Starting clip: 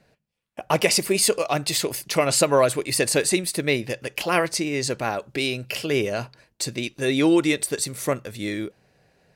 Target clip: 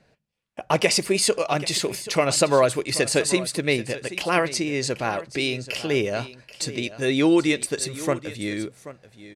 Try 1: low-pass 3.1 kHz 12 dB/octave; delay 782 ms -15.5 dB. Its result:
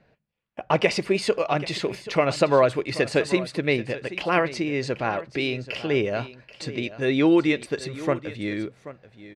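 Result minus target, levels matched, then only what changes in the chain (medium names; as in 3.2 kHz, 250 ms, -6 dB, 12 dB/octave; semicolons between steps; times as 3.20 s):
8 kHz band -14.0 dB
change: low-pass 9 kHz 12 dB/octave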